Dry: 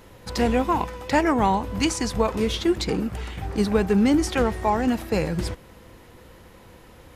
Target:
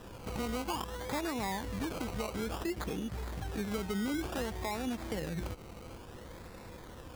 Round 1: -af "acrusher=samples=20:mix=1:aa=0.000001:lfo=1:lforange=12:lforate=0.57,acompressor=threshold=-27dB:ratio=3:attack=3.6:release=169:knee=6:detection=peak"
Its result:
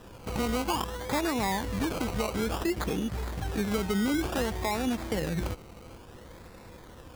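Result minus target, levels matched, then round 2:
downward compressor: peak gain reduction −6.5 dB
-af "acrusher=samples=20:mix=1:aa=0.000001:lfo=1:lforange=12:lforate=0.57,acompressor=threshold=-37dB:ratio=3:attack=3.6:release=169:knee=6:detection=peak"

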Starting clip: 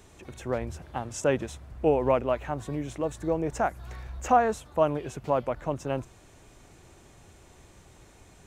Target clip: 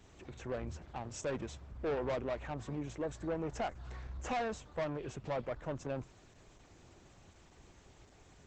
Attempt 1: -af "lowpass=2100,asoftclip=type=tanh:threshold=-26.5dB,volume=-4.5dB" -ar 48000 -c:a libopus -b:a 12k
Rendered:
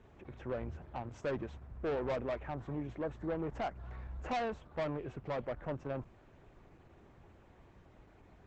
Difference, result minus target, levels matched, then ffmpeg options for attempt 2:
8,000 Hz band −14.5 dB
-af "lowpass=7800,asoftclip=type=tanh:threshold=-26.5dB,volume=-4.5dB" -ar 48000 -c:a libopus -b:a 12k

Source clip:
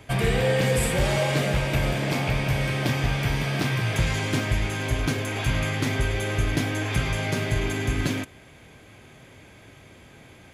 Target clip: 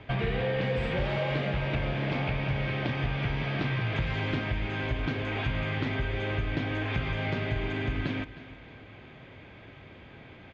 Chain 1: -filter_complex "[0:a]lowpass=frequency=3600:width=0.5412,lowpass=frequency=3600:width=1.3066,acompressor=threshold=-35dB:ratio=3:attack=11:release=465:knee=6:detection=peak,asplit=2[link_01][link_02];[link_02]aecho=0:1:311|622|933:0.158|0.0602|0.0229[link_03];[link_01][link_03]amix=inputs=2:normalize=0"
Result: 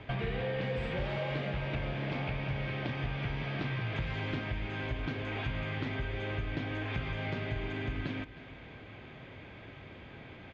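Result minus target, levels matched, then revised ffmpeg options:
downward compressor: peak gain reduction +5.5 dB
-filter_complex "[0:a]lowpass=frequency=3600:width=0.5412,lowpass=frequency=3600:width=1.3066,acompressor=threshold=-27dB:ratio=3:attack=11:release=465:knee=6:detection=peak,asplit=2[link_01][link_02];[link_02]aecho=0:1:311|622|933:0.158|0.0602|0.0229[link_03];[link_01][link_03]amix=inputs=2:normalize=0"

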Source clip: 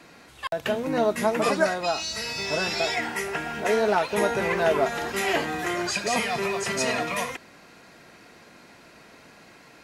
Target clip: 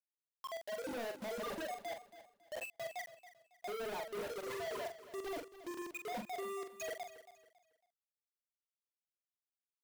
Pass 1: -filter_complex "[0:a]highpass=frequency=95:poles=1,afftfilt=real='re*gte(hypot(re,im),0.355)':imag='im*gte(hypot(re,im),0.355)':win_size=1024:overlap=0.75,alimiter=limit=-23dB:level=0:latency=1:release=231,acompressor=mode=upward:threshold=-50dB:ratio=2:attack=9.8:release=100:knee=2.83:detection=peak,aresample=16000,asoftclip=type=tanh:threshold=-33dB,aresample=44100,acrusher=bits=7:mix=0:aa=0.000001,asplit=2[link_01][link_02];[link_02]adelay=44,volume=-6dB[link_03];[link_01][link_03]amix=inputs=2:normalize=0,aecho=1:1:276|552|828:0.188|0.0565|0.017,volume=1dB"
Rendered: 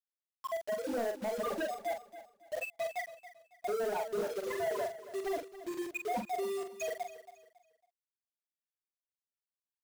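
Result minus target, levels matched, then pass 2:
soft clipping: distortion −5 dB
-filter_complex "[0:a]highpass=frequency=95:poles=1,afftfilt=real='re*gte(hypot(re,im),0.355)':imag='im*gte(hypot(re,im),0.355)':win_size=1024:overlap=0.75,alimiter=limit=-23dB:level=0:latency=1:release=231,acompressor=mode=upward:threshold=-50dB:ratio=2:attack=9.8:release=100:knee=2.83:detection=peak,aresample=16000,asoftclip=type=tanh:threshold=-43.5dB,aresample=44100,acrusher=bits=7:mix=0:aa=0.000001,asplit=2[link_01][link_02];[link_02]adelay=44,volume=-6dB[link_03];[link_01][link_03]amix=inputs=2:normalize=0,aecho=1:1:276|552|828:0.188|0.0565|0.017,volume=1dB"

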